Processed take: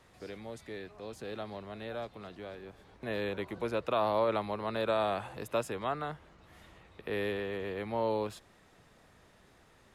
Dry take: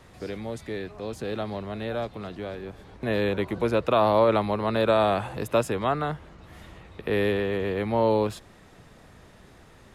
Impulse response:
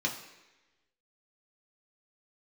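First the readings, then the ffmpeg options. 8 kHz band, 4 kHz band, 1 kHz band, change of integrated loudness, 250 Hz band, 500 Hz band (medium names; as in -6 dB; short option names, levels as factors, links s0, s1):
-7.5 dB, -7.5 dB, -8.0 dB, -9.0 dB, -11.0 dB, -9.0 dB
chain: -af "lowshelf=f=340:g=-5.5,volume=0.422"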